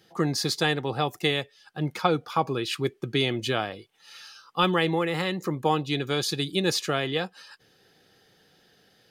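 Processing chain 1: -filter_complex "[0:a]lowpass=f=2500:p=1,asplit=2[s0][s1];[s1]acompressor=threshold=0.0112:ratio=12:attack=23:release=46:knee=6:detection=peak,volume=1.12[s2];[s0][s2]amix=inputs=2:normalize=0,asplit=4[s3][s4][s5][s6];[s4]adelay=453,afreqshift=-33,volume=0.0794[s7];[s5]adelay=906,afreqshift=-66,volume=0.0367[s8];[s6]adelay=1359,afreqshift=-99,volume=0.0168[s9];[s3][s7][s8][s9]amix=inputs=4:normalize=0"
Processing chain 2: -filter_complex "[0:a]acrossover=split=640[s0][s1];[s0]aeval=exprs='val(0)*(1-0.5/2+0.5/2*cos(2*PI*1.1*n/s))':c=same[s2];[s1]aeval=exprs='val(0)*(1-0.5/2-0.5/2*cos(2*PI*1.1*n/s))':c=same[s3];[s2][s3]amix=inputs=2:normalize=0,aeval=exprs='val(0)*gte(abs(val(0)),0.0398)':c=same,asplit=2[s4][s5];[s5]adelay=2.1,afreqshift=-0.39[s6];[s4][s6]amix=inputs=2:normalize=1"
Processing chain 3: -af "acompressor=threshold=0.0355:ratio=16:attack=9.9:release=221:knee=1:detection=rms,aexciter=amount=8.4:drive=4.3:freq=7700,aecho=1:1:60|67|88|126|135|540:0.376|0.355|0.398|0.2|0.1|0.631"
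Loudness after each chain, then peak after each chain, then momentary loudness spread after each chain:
-25.5 LUFS, -32.5 LUFS, -31.0 LUFS; -7.5 dBFS, -14.0 dBFS, -12.5 dBFS; 12 LU, 6 LU, 10 LU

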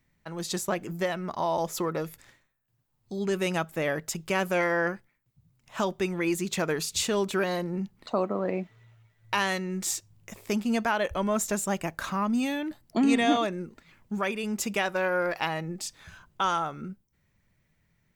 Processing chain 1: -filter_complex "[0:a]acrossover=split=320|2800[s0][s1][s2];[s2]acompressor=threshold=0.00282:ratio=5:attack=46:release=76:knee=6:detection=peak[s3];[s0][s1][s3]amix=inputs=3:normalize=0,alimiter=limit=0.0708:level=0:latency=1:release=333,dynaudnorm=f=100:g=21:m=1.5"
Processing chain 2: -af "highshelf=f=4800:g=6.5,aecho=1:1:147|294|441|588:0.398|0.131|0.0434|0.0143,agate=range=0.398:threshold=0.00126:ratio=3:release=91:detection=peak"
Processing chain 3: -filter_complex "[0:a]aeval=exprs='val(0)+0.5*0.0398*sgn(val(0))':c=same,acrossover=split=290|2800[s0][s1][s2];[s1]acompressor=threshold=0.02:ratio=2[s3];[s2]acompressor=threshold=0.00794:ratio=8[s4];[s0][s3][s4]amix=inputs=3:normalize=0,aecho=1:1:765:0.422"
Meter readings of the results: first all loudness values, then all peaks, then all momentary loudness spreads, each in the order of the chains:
-31.0 LUFS, -27.5 LUFS, -29.5 LUFS; -19.5 dBFS, -10.0 dBFS, -13.5 dBFS; 11 LU, 13 LU, 7 LU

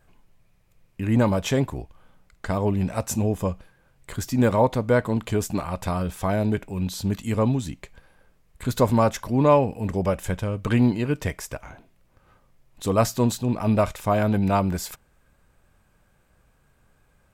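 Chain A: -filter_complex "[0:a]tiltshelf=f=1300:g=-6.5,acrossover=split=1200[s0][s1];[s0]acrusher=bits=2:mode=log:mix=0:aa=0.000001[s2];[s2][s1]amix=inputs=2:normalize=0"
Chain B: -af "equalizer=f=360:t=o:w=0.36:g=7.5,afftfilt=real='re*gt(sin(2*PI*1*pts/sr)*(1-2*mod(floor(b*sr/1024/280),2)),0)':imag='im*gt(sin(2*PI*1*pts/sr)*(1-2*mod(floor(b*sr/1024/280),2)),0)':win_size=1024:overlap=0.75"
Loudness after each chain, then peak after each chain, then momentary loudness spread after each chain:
-27.0 LUFS, -26.0 LUFS; -7.0 dBFS, -6.5 dBFS; 11 LU, 14 LU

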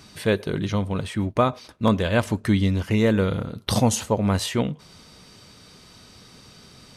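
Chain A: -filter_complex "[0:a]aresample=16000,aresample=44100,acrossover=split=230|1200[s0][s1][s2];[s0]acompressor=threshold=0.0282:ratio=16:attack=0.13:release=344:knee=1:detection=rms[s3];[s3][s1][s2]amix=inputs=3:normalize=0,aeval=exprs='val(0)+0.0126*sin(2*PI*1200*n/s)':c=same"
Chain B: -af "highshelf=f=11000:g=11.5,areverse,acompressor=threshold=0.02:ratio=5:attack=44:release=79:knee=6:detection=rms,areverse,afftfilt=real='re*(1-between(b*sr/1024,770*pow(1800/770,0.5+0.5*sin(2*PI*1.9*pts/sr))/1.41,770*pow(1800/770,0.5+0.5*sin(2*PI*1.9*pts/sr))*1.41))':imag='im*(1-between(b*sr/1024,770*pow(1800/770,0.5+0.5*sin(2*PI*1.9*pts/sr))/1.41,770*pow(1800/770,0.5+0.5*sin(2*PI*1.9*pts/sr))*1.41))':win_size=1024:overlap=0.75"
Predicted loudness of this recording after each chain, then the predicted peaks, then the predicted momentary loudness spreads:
-26.0 LUFS, -34.0 LUFS; -5.0 dBFS, -19.5 dBFS; 16 LU, 14 LU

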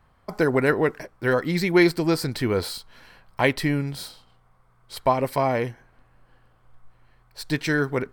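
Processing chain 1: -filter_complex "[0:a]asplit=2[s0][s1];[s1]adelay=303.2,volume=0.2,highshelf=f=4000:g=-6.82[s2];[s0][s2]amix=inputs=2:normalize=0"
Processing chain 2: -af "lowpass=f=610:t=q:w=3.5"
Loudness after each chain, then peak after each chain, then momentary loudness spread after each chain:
-23.5 LUFS, -19.5 LUFS; -5.5 dBFS, -2.5 dBFS; 18 LU, 11 LU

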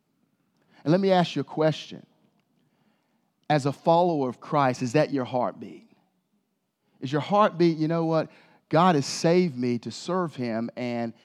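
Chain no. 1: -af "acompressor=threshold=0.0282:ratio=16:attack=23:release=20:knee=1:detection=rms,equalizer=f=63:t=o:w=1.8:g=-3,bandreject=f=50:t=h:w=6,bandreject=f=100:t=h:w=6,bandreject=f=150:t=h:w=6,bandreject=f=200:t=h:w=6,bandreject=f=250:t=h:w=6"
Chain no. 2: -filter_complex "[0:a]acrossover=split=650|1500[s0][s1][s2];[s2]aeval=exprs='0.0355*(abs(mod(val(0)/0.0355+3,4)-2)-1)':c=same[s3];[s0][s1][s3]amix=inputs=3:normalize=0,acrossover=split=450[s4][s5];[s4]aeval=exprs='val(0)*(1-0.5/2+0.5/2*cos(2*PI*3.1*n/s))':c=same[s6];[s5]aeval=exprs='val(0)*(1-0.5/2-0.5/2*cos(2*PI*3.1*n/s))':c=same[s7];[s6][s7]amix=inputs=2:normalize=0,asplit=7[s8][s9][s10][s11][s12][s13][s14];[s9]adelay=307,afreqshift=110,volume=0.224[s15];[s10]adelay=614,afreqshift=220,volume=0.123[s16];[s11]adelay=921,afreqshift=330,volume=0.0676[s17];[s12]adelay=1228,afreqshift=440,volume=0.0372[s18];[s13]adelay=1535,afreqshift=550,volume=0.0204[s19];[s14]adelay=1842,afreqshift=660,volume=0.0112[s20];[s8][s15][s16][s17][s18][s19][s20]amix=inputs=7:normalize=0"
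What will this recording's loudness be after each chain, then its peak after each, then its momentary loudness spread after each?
-33.5 LUFS, -27.0 LUFS; -15.5 dBFS, -10.5 dBFS; 7 LU, 15 LU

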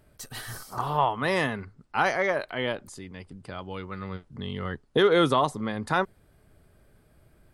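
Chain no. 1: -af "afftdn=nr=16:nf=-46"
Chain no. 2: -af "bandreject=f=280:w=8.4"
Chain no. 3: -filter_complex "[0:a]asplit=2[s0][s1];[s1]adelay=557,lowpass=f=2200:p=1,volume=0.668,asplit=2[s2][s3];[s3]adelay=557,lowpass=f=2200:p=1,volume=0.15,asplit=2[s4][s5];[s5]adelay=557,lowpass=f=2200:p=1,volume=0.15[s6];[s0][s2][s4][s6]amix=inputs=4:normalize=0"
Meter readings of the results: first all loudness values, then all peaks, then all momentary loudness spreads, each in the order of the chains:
-27.0 LUFS, -27.5 LUFS, -26.5 LUFS; -10.5 dBFS, -10.5 dBFS, -7.5 dBFS; 19 LU, 18 LU, 15 LU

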